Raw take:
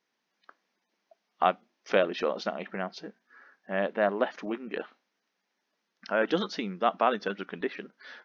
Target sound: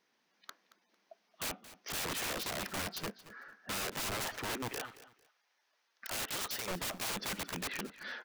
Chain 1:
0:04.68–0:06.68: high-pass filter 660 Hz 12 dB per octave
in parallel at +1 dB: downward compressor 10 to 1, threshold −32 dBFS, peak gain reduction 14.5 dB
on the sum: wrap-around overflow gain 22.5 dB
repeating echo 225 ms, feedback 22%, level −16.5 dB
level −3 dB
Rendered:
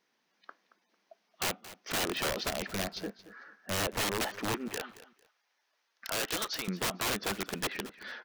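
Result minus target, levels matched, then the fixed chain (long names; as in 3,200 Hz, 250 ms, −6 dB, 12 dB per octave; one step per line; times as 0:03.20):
wrap-around overflow: distortion −9 dB
0:04.68–0:06.68: high-pass filter 660 Hz 12 dB per octave
in parallel at +1 dB: downward compressor 10 to 1, threshold −32 dBFS, peak gain reduction 14.5 dB
on the sum: wrap-around overflow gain 29 dB
repeating echo 225 ms, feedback 22%, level −16.5 dB
level −3 dB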